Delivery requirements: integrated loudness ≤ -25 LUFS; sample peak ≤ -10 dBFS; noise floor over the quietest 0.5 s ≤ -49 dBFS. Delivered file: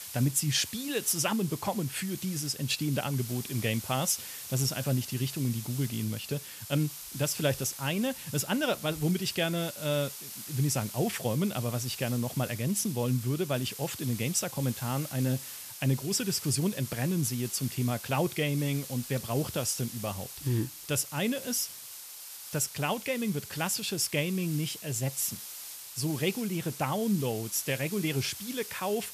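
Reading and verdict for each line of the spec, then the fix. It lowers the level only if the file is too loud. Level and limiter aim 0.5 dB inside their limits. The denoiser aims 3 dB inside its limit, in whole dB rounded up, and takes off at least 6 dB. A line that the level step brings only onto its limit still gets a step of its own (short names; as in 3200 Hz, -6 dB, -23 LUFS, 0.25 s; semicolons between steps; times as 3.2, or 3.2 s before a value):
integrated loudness -30.5 LUFS: OK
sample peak -13.5 dBFS: OK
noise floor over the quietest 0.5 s -45 dBFS: fail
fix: denoiser 7 dB, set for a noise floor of -45 dBFS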